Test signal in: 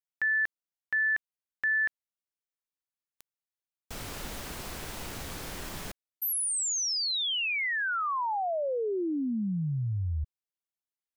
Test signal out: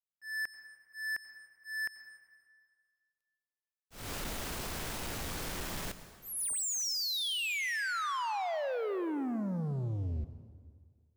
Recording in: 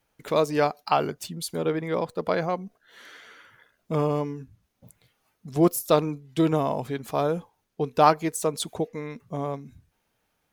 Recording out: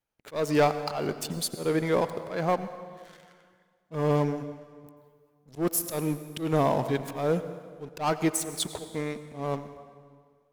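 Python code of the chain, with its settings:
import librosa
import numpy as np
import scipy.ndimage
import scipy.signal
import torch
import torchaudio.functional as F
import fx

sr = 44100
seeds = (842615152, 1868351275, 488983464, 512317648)

y = fx.leveller(x, sr, passes=3)
y = fx.auto_swell(y, sr, attack_ms=210.0)
y = fx.rev_plate(y, sr, seeds[0], rt60_s=1.9, hf_ratio=0.8, predelay_ms=75, drr_db=11.5)
y = y * 10.0 ** (-8.5 / 20.0)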